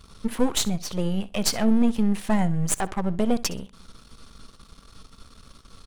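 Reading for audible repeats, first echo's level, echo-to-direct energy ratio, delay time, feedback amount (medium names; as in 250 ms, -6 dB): 2, -18.5 dB, -18.5 dB, 64 ms, 21%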